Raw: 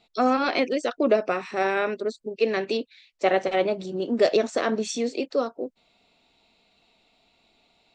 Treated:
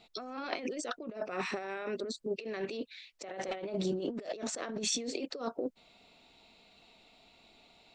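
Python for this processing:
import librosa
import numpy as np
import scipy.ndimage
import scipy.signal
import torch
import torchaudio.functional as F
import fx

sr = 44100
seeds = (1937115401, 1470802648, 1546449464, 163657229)

y = fx.over_compress(x, sr, threshold_db=-33.0, ratio=-1.0)
y = y * librosa.db_to_amplitude(-5.0)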